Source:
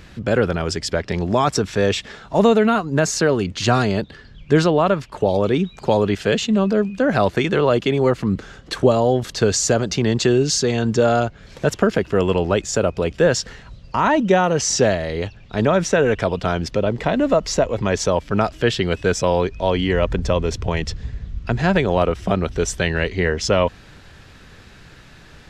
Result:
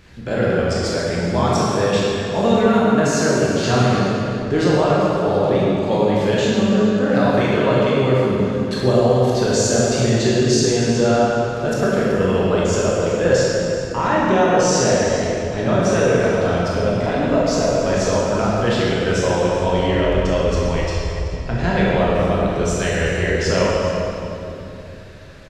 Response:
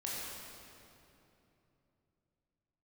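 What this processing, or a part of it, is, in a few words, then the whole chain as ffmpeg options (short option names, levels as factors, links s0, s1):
cave: -filter_complex "[0:a]aecho=1:1:383:0.188[s0];[1:a]atrim=start_sample=2205[s1];[s0][s1]afir=irnorm=-1:irlink=0,asettb=1/sr,asplit=3[s2][s3][s4];[s2]atrim=end=20.834[s5];[s3]atrim=start=20.83:end=21.33,asetpts=PTS-STARTPTS,afade=t=in:d=0.004:c=qsin,afade=t=out:st=0.496:d=0.004:c=qsin,equalizer=f=230:t=o:w=0.39:g=-15[s6];[s4]atrim=start=21.326[s7];[s5][s6]acrossfade=d=0.004:c1=hsin:c2=qsin[s8];[s8][s7]acrossfade=d=0.004:c1=qsin:c2=hsin,volume=0.841"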